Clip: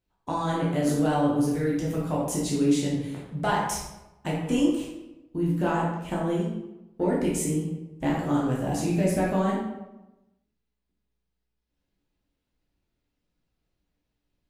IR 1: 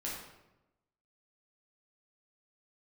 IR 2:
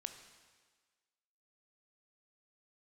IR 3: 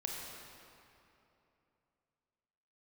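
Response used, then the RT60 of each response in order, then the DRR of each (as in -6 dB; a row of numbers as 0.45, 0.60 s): 1; 0.95, 1.5, 2.9 s; -6.0, 7.0, -1.5 dB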